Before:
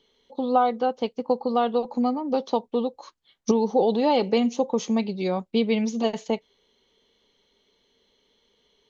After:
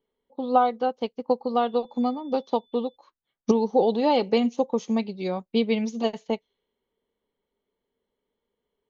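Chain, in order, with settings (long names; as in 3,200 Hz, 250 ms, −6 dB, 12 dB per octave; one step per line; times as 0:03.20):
0:01.63–0:02.95: steady tone 3,500 Hz −52 dBFS
low-pass that shuts in the quiet parts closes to 1,500 Hz, open at −21 dBFS
expander for the loud parts 1.5 to 1, over −42 dBFS
level +1.5 dB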